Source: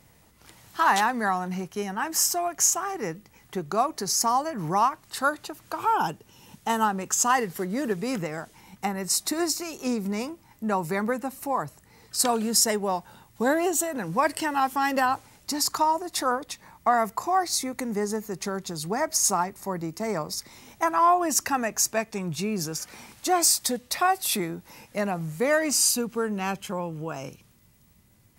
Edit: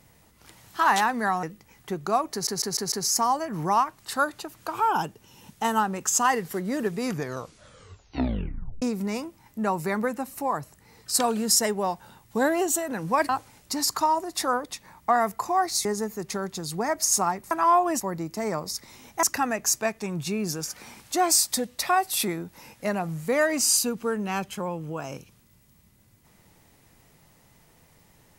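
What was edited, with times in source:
1.43–3.08 cut
3.97 stutter 0.15 s, 5 plays
8.04 tape stop 1.83 s
14.34–15.07 cut
17.63–17.97 cut
20.86–21.35 move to 19.63

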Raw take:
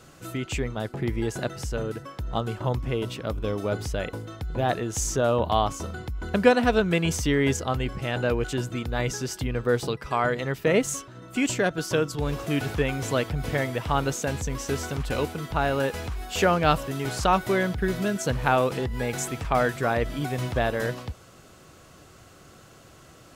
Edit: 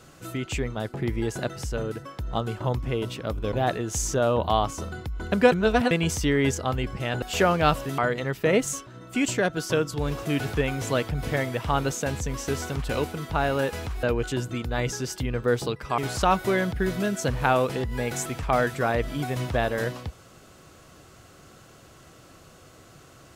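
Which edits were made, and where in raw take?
3.52–4.54 cut
6.54–6.93 reverse
8.24–10.19 swap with 16.24–17

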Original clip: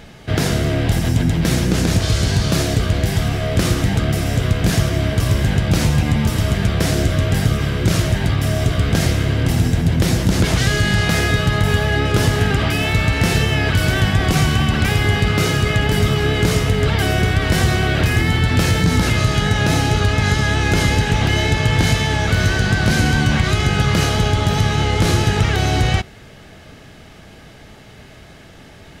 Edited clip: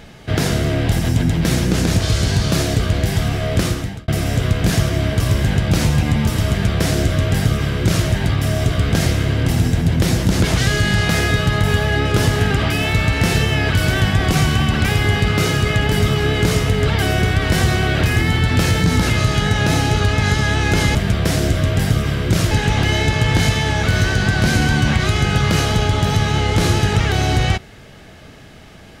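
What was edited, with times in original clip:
3.57–4.08 fade out
6.5–8.06 copy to 20.95

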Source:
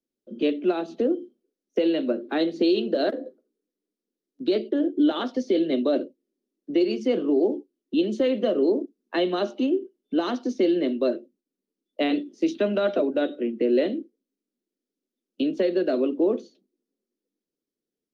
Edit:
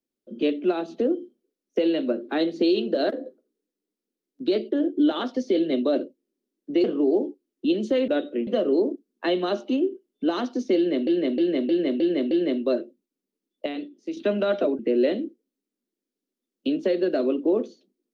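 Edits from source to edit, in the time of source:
6.84–7.13 cut
10.66–10.97 loop, 6 plays
12.01–12.52 gain -8.5 dB
13.14–13.53 move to 8.37

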